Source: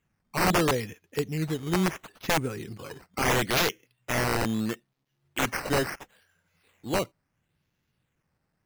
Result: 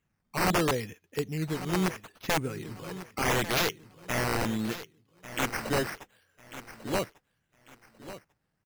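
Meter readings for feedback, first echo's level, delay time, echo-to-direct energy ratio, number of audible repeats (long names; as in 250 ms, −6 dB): 28%, −14.0 dB, 1,145 ms, −13.5 dB, 2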